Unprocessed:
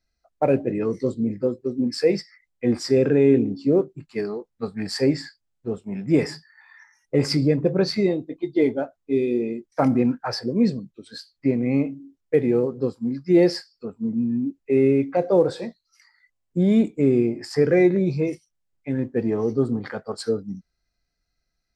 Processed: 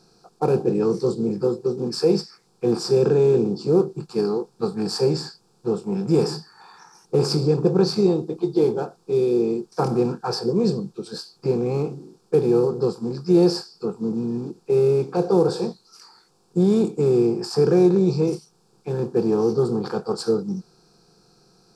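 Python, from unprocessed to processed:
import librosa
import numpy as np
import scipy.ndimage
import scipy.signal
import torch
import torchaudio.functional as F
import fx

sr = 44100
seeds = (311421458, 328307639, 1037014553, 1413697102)

y = fx.bin_compress(x, sr, power=0.6)
y = fx.fixed_phaser(y, sr, hz=400.0, stages=8)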